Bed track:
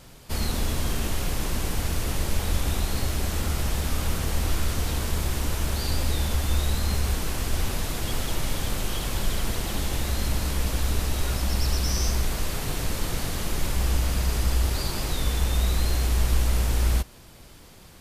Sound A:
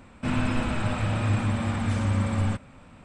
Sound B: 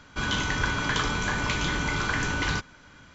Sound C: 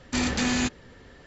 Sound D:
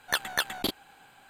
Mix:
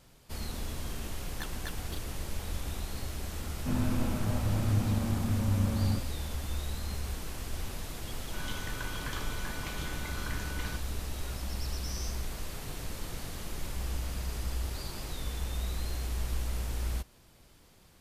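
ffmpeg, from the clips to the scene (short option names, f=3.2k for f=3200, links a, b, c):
-filter_complex "[0:a]volume=-11dB[a];[1:a]tiltshelf=f=1.2k:g=7.5[b];[4:a]atrim=end=1.29,asetpts=PTS-STARTPTS,volume=-16dB,afade=t=in:d=0.004:c=hsin,afade=t=out:st=1.286:d=0.004:c=hsin,adelay=1280[c];[b]atrim=end=3.04,asetpts=PTS-STARTPTS,volume=-11dB,afade=t=in:d=0.004:c=hsin,afade=t=out:st=3.036:d=0.004:c=hsin,adelay=3430[d];[2:a]atrim=end=3.14,asetpts=PTS-STARTPTS,volume=-14dB,afade=t=in:d=0.004:c=hsin,afade=t=out:st=3.136:d=0.004:c=hsin,adelay=8170[e];[a][c][d][e]amix=inputs=4:normalize=0"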